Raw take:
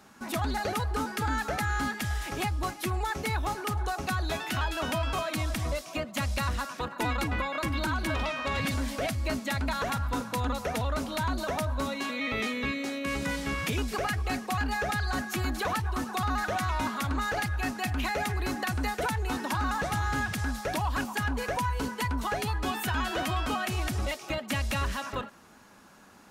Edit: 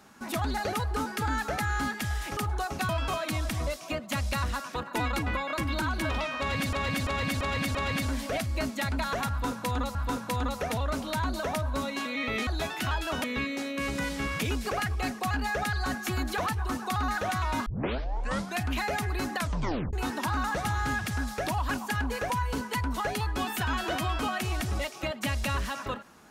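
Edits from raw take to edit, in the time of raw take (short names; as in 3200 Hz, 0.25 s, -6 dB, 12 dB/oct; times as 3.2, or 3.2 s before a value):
2.37–3.65 cut
4.17–4.94 move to 12.51
8.44–8.78 loop, 5 plays
9.99–10.64 loop, 2 plays
16.93 tape start 0.95 s
18.64 tape stop 0.56 s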